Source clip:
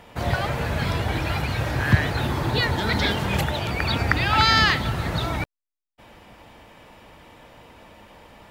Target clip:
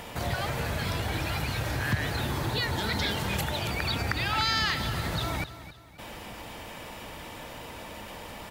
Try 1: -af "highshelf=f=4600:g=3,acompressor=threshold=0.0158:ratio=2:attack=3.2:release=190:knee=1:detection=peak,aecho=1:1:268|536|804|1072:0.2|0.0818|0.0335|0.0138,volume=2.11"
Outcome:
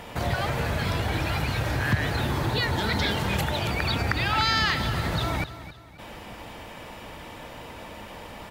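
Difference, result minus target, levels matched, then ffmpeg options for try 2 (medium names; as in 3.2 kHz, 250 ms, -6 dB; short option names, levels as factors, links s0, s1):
compression: peak gain reduction -4 dB; 8 kHz band -4.0 dB
-af "highshelf=f=4600:g=9.5,acompressor=threshold=0.00631:ratio=2:attack=3.2:release=190:knee=1:detection=peak,aecho=1:1:268|536|804|1072:0.2|0.0818|0.0335|0.0138,volume=2.11"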